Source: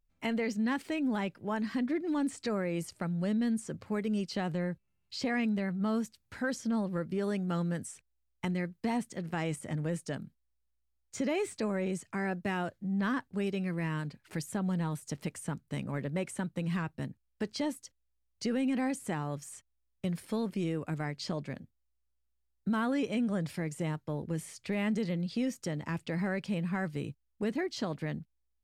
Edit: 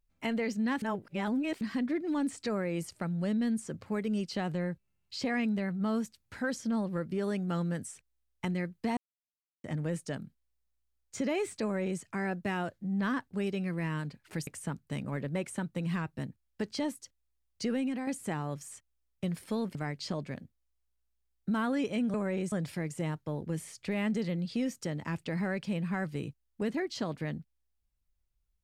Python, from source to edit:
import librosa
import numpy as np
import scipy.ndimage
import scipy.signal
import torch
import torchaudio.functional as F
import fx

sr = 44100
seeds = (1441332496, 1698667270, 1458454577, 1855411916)

y = fx.edit(x, sr, fx.reverse_span(start_s=0.82, length_s=0.79),
    fx.silence(start_s=8.97, length_s=0.67),
    fx.duplicate(start_s=11.63, length_s=0.38, to_s=23.33),
    fx.cut(start_s=14.47, length_s=0.81),
    fx.fade_out_to(start_s=18.54, length_s=0.34, floor_db=-7.0),
    fx.cut(start_s=20.56, length_s=0.38), tone=tone)